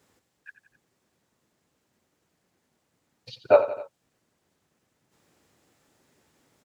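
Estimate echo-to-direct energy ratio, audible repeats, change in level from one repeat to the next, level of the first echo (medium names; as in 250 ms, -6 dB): -11.5 dB, 3, -4.5 dB, -13.0 dB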